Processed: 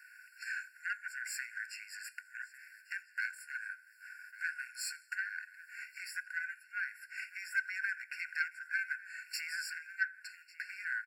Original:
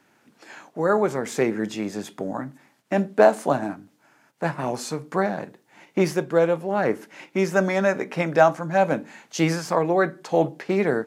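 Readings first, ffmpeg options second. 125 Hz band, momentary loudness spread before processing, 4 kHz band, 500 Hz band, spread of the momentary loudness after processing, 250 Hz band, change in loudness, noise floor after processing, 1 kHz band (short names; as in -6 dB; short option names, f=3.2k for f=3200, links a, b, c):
under -40 dB, 13 LU, -9.0 dB, under -40 dB, 11 LU, under -40 dB, -16.5 dB, -62 dBFS, -25.5 dB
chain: -filter_complex "[0:a]equalizer=f=1.5k:t=o:w=0.22:g=14.5,acompressor=threshold=-40dB:ratio=2.5,highshelf=f=8.5k:g=9,asplit=2[a][b];[b]aecho=0:1:85|170|255:0.0631|0.0341|0.0184[c];[a][c]amix=inputs=2:normalize=0,aeval=exprs='0.112*(cos(1*acos(clip(val(0)/0.112,-1,1)))-cos(1*PI/2))+0.02*(cos(4*acos(clip(val(0)/0.112,-1,1)))-cos(4*PI/2))':c=same,bandreject=f=1.3k:w=7.1,asplit=2[d][e];[e]adelay=1148,lowpass=f=4.2k:p=1,volume=-17dB,asplit=2[f][g];[g]adelay=1148,lowpass=f=4.2k:p=1,volume=0.46,asplit=2[h][i];[i]adelay=1148,lowpass=f=4.2k:p=1,volume=0.46,asplit=2[j][k];[k]adelay=1148,lowpass=f=4.2k:p=1,volume=0.46[l];[f][h][j][l]amix=inputs=4:normalize=0[m];[d][m]amix=inputs=2:normalize=0,afftfilt=real='re*eq(mod(floor(b*sr/1024/1400),2),1)':imag='im*eq(mod(floor(b*sr/1024/1400),2),1)':win_size=1024:overlap=0.75,volume=2.5dB"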